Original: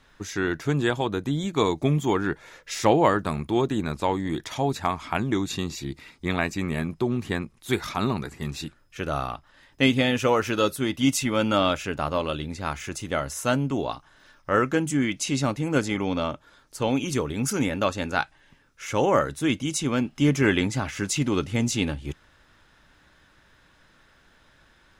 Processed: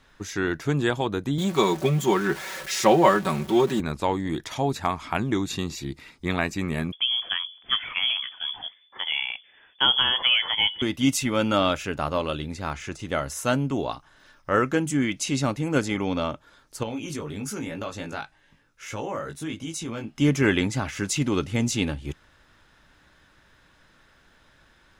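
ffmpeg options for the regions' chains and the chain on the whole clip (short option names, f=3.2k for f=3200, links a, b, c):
-filter_complex "[0:a]asettb=1/sr,asplit=3[a][b][c];[a]atrim=end=1.384[d];[b]atrim=start=1.38:end=3.8,asetpts=PTS-STARTPTS,afade=t=in:d=0.004:c=qsin,afade=t=out:st=2.416:d=0.004:c=qsin,aeval=exprs='val(0)+0.5*0.0224*sgn(val(0))':c=same,highpass=f=170:p=1,aecho=1:1:5.3:0.74,atrim=end_sample=106722[e];[c]atrim=start=3.796[f];[d][e]acrossfade=d=0.004:c1=hsin:c2=qsin[g];[g][f]acrossfade=d=0.004:c1=qsin:c2=hsin,asettb=1/sr,asplit=3[h][i][j];[h]atrim=end=6.924[k];[i]atrim=start=6.92:end=10.82,asetpts=PTS-STARTPTS,afade=t=in:d=0.004:c=qsin,afade=t=out:st=3.896:d=0.004:c=qsin,bandreject=f=90.45:t=h:w=4,bandreject=f=180.9:t=h:w=4,bandreject=f=271.35:t=h:w=4,bandreject=f=361.8:t=h:w=4,bandreject=f=452.25:t=h:w=4,bandreject=f=542.7:t=h:w=4,bandreject=f=633.15:t=h:w=4,lowpass=f=3k:t=q:w=0.5098,lowpass=f=3k:t=q:w=0.6013,lowpass=f=3k:t=q:w=0.9,lowpass=f=3k:t=q:w=2.563,afreqshift=-3500[l];[j]atrim=start=10.816[m];[k][l]acrossfade=d=0.004:c1=hsin:c2=qsin[n];[n][m]acrossfade=d=0.004:c1=qsin:c2=hsin,asettb=1/sr,asplit=3[o][p][q];[o]atrim=end=12.654[r];[p]atrim=start=12.65:end=13.09,asetpts=PTS-STARTPTS,afade=t=in:d=0.004:c=qsin,afade=t=out:st=0.436:d=0.004:c=qsin,lowpass=8.1k,deesser=0.95[s];[q]atrim=start=13.086[t];[r][s]acrossfade=d=0.004:c1=hsin:c2=qsin[u];[u][t]acrossfade=d=0.004:c1=qsin:c2=hsin,asettb=1/sr,asplit=3[v][w][x];[v]atrim=end=16.834[y];[w]atrim=start=16.83:end=20.18,asetpts=PTS-STARTPTS,afade=t=in:d=0.004:c=qsin,afade=t=out:st=3.346:d=0.004:c=qsin,flanger=delay=17.5:depth=2.4:speed=1,acompressor=threshold=-29dB:ratio=3:attack=3.2:release=140:knee=1:detection=peak[z];[x]atrim=start=20.176[aa];[y][z]acrossfade=d=0.004:c1=hsin:c2=qsin[ab];[ab][aa]acrossfade=d=0.004:c1=qsin:c2=hsin"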